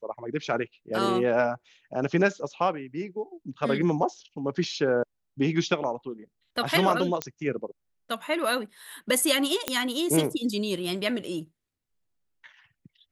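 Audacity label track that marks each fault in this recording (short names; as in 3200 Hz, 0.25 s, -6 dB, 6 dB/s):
7.220000	7.220000	pop -11 dBFS
9.680000	9.680000	pop -8 dBFS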